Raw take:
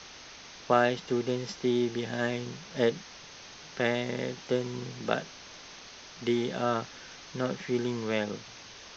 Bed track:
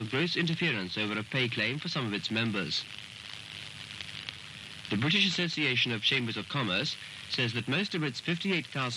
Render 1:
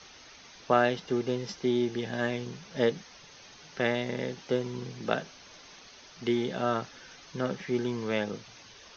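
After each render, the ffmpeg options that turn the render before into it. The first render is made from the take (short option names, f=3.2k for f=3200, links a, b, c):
-af "afftdn=nr=7:nf=-48"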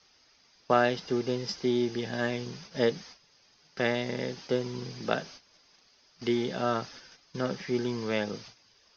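-af "agate=range=-14dB:threshold=-48dB:ratio=16:detection=peak,equalizer=f=4.9k:t=o:w=0.2:g=10.5"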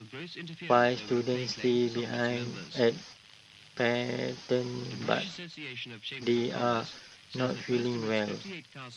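-filter_complex "[1:a]volume=-12.5dB[a];[0:a][a]amix=inputs=2:normalize=0"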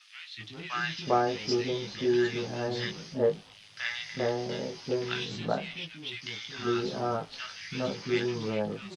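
-filter_complex "[0:a]asplit=2[a][b];[b]adelay=19,volume=-5dB[c];[a][c]amix=inputs=2:normalize=0,acrossover=split=300|1300[d][e][f];[d]adelay=370[g];[e]adelay=400[h];[g][h][f]amix=inputs=3:normalize=0"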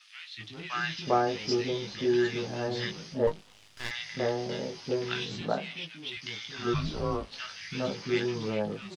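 -filter_complex "[0:a]asettb=1/sr,asplit=3[a][b][c];[a]atrim=end=3.274[d];[b]atrim=start=3.27:end=3.91,asetpts=PTS-STARTPTS,afade=t=in:d=0.004:c=qsin,afade=t=out:st=0.636:d=0.004:c=qsin,aeval=exprs='max(val(0),0)':c=same[e];[c]atrim=start=3.906[f];[d][e]acrossfade=d=0.004:c1=hsin:c2=qsin[g];[g][f]acrossfade=d=0.004:c1=qsin:c2=hsin,asettb=1/sr,asplit=3[h][i][j];[h]atrim=end=5.414[k];[i]atrim=start=5.41:end=6.17,asetpts=PTS-STARTPTS,afade=t=in:d=0.004:c=qsin,afade=t=out:st=0.756:d=0.004:c=qsin,highpass=140[l];[j]atrim=start=6.166[m];[k][l]acrossfade=d=0.004:c1=hsin:c2=qsin[n];[n][m]acrossfade=d=0.004:c1=qsin:c2=hsin,asplit=3[o][p][q];[o]afade=t=out:st=6.73:d=0.02[r];[p]afreqshift=-210,afade=t=in:st=6.73:d=0.02,afade=t=out:st=7.3:d=0.02[s];[q]afade=t=in:st=7.3:d=0.02[t];[r][s][t]amix=inputs=3:normalize=0"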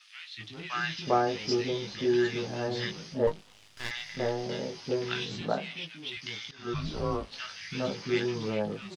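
-filter_complex "[0:a]asettb=1/sr,asplit=3[a][b][c];[a]atrim=end=3.974[d];[b]atrim=start=3.97:end=4.44,asetpts=PTS-STARTPTS,afade=t=in:d=0.004:c=qsin,afade=t=out:st=0.466:d=0.004:c=qsin,aeval=exprs='if(lt(val(0),0),0.708*val(0),val(0))':c=same[e];[c]atrim=start=4.436[f];[d][e]acrossfade=d=0.004:c1=hsin:c2=qsin[g];[g][f]acrossfade=d=0.004:c1=qsin:c2=hsin,asplit=2[h][i];[h]atrim=end=6.51,asetpts=PTS-STARTPTS,afade=t=out:st=6.506:d=0.004:c=hsin:silence=0.199526[j];[i]atrim=start=6.51,asetpts=PTS-STARTPTS,afade=t=in:d=0.47:silence=0.199526[k];[j][k]concat=n=2:v=0:a=1"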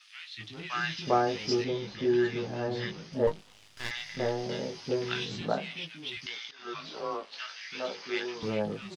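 -filter_complex "[0:a]asettb=1/sr,asplit=3[a][b][c];[a]atrim=end=1.644[d];[b]atrim=start=1.64:end=3.13,asetpts=PTS-STARTPTS,afade=t=in:d=0.004:c=qsin,afade=t=out:st=1.486:d=0.004:c=qsin,highshelf=f=4.2k:g=-10.5[e];[c]atrim=start=3.126[f];[d][e]acrossfade=d=0.004:c1=hsin:c2=qsin[g];[g][f]acrossfade=d=0.004:c1=qsin:c2=hsin,asettb=1/sr,asplit=3[h][i][j];[h]atrim=end=6.264[k];[i]atrim=start=6.26:end=8.43,asetpts=PTS-STARTPTS,afade=t=in:d=0.004:c=qsin,afade=t=out:st=2.166:d=0.004:c=qsin,highpass=480,lowpass=6k[l];[j]atrim=start=8.426[m];[k][l]acrossfade=d=0.004:c1=hsin:c2=qsin[n];[n][m]acrossfade=d=0.004:c1=qsin:c2=hsin"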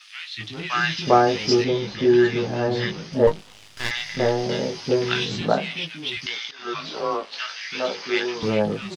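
-af "volume=9.5dB"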